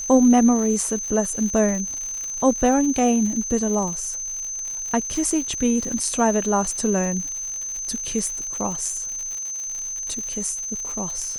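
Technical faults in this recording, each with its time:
crackle 140 per s -30 dBFS
whine 6.2 kHz -27 dBFS

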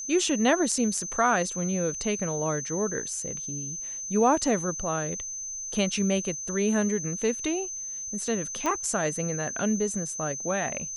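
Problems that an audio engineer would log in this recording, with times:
whine 6.2 kHz -33 dBFS
8.66 s: pop -14 dBFS

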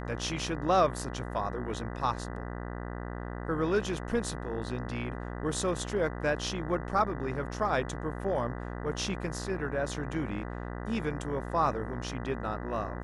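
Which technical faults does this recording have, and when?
buzz 60 Hz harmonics 33 -38 dBFS

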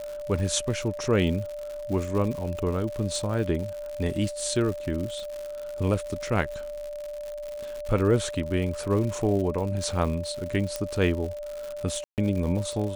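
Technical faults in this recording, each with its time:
crackle 130 per s -32 dBFS
whine 590 Hz -33 dBFS
10.76 s: pop -13 dBFS
12.04–12.18 s: dropout 138 ms

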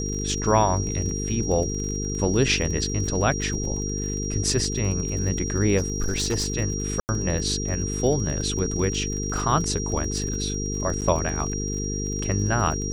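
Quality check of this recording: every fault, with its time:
buzz 50 Hz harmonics 9 -29 dBFS
crackle 37 per s -31 dBFS
whine 5.7 kHz -31 dBFS
5.77–6.48 s: clipped -19.5 dBFS
7.00–7.09 s: dropout 89 ms
11.01–11.02 s: dropout 8.2 ms

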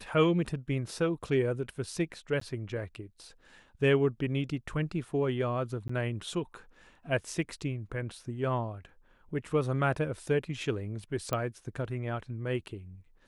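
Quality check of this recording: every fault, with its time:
2.40–2.41 s: dropout
5.88–5.89 s: dropout 14 ms
11.33 s: pop -16 dBFS

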